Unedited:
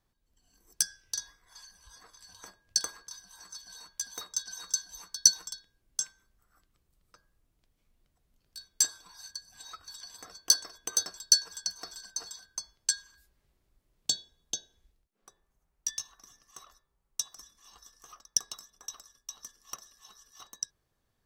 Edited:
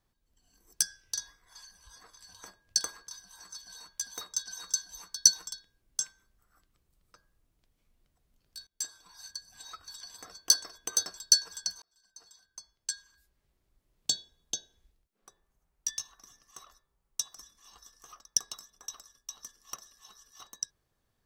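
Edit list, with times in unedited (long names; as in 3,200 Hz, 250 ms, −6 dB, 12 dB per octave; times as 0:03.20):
0:08.67–0:09.27: fade in, from −22.5 dB
0:11.82–0:14.12: fade in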